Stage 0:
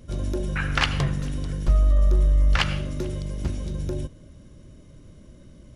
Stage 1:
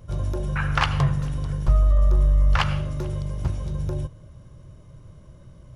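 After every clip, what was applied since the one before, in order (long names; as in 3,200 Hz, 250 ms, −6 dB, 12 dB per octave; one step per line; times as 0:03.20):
octave-band graphic EQ 125/250/1,000/2,000/4,000/8,000 Hz +8/−10/+7/−3/−3/−4 dB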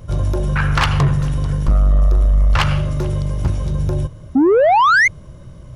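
sound drawn into the spectrogram rise, 0:04.35–0:05.08, 250–2,200 Hz −17 dBFS
soft clipping −17.5 dBFS, distortion −13 dB
level +9 dB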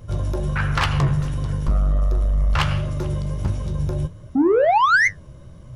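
flanger 1.4 Hz, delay 7.7 ms, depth 8.2 ms, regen +60%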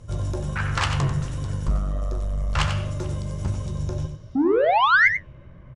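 low-pass filter sweep 8,000 Hz → 2,000 Hz, 0:03.71–0:05.56
single-tap delay 92 ms −8.5 dB
level −3.5 dB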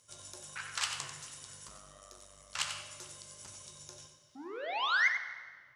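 first difference
dense smooth reverb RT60 1.5 s, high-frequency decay 0.8×, DRR 8.5 dB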